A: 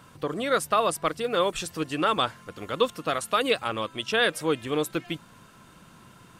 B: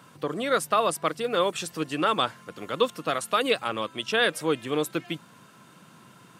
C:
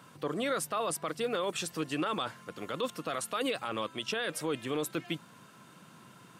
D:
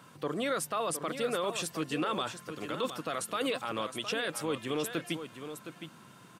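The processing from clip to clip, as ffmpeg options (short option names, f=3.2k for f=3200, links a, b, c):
-af "highpass=f=120:w=0.5412,highpass=f=120:w=1.3066"
-af "alimiter=limit=-20.5dB:level=0:latency=1:release=11,volume=-2.5dB"
-af "aecho=1:1:714:0.335"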